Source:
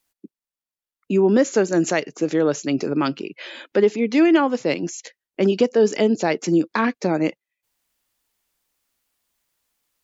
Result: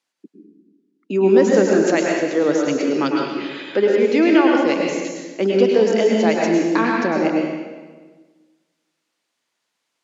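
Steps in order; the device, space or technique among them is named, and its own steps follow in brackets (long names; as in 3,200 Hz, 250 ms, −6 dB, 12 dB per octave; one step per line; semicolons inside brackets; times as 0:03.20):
supermarket ceiling speaker (band-pass filter 230–6,200 Hz; convolution reverb RT60 1.4 s, pre-delay 97 ms, DRR −1 dB)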